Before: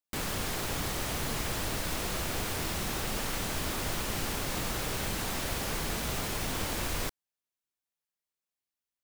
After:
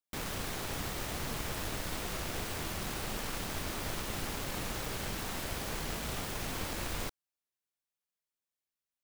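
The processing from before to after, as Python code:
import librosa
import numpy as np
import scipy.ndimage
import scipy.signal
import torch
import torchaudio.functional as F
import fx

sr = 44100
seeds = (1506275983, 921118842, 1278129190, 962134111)

y = fx.self_delay(x, sr, depth_ms=0.19)
y = y * 10.0 ** (-3.0 / 20.0)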